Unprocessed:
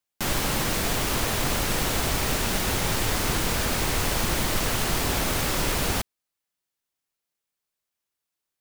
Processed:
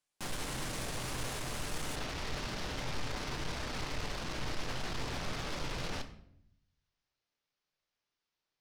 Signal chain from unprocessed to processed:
Butterworth low-pass 11,000 Hz, from 0:01.95 5,900 Hz
brickwall limiter −25 dBFS, peak gain reduction 12 dB
soft clipping −37 dBFS, distortion −9 dB
rectangular room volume 140 cubic metres, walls mixed, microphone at 0.41 metres

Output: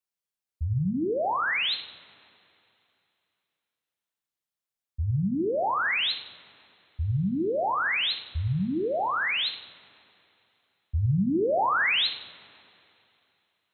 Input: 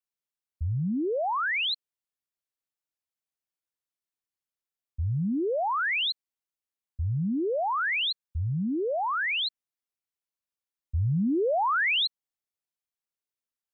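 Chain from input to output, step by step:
coupled-rooms reverb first 0.69 s, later 2.9 s, from −21 dB, DRR 6 dB

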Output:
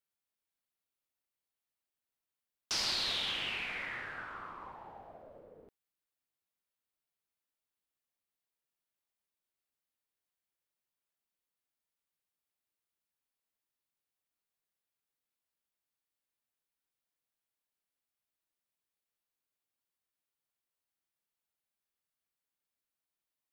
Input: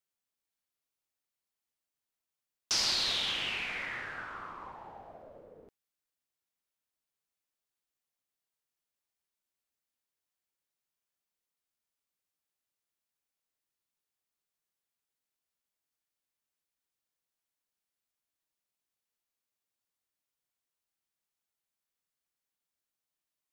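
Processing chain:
parametric band 6,300 Hz −4.5 dB 0.8 octaves
level −2 dB

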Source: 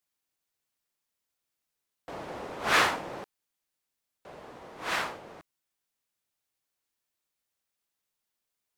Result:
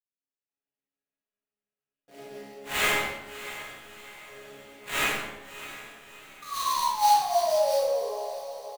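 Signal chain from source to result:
adaptive Wiener filter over 41 samples
meter weighting curve D
automatic gain control gain up to 11 dB
sound drawn into the spectrogram fall, 0:06.42–0:08.02, 450–1,200 Hz −15 dBFS
resonators tuned to a chord C#3 fifth, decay 0.64 s
sample-rate reduction 5,200 Hz, jitter 20%
double-tracking delay 14 ms −10.5 dB
feedback delay with all-pass diffusion 652 ms, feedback 49%, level −13 dB
comb and all-pass reverb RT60 0.94 s, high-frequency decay 0.55×, pre-delay 0 ms, DRR −7 dB

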